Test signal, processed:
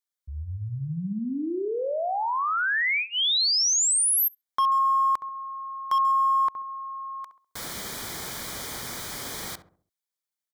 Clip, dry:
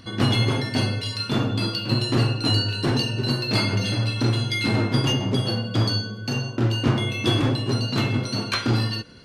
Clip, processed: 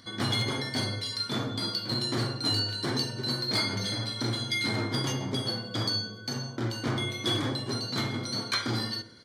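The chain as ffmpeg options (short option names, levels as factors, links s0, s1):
-filter_complex "[0:a]asuperstop=centerf=2700:order=4:qfactor=4.9,asplit=2[s0][s1];[s1]adelay=67,lowpass=f=1000:p=1,volume=0.355,asplit=2[s2][s3];[s3]adelay=67,lowpass=f=1000:p=1,volume=0.46,asplit=2[s4][s5];[s5]adelay=67,lowpass=f=1000:p=1,volume=0.46,asplit=2[s6][s7];[s7]adelay=67,lowpass=f=1000:p=1,volume=0.46,asplit=2[s8][s9];[s9]adelay=67,lowpass=f=1000:p=1,volume=0.46[s10];[s2][s4][s6][s8][s10]amix=inputs=5:normalize=0[s11];[s0][s11]amix=inputs=2:normalize=0,asoftclip=type=hard:threshold=0.224,highpass=f=120:p=1,tiltshelf=f=1300:g=-3.5,volume=0.562"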